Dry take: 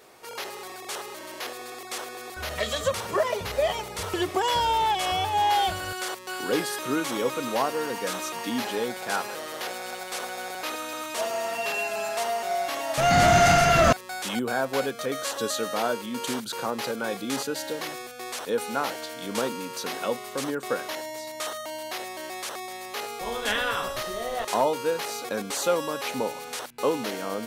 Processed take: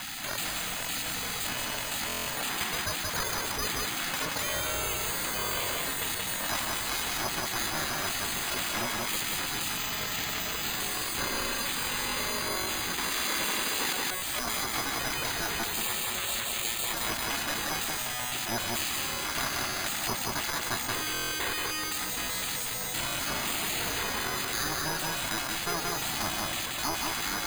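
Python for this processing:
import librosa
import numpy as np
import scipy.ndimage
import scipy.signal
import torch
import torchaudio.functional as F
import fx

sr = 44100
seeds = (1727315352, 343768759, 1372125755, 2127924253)

y = fx.lower_of_two(x, sr, delay_ms=1.9)
y = fx.graphic_eq_10(y, sr, hz=(250, 500, 2000), db=(-11, -9, 8), at=(15.63, 16.94))
y = np.repeat(scipy.signal.resample_poly(y, 1, 8), 8)[:len(y)]
y = fx.spec_gate(y, sr, threshold_db=-15, keep='weak')
y = y + 10.0 ** (-5.0 / 20.0) * np.pad(y, (int(178 * sr / 1000.0), 0))[:len(y)]
y = fx.rider(y, sr, range_db=4, speed_s=0.5)
y = fx.peak_eq(y, sr, hz=9500.0, db=-12.0, octaves=0.26, at=(9.77, 10.8))
y = fx.buffer_glitch(y, sr, at_s=(2.08, 21.13), block=1024, repeats=7)
y = fx.env_flatten(y, sr, amount_pct=70)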